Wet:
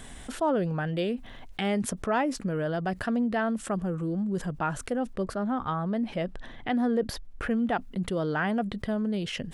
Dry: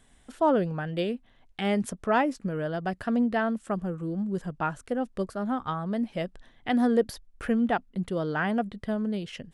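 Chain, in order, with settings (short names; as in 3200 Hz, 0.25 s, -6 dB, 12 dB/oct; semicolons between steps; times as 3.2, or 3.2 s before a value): 5.13–7.51 high shelf 5000 Hz -10 dB; fast leveller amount 50%; gain -4.5 dB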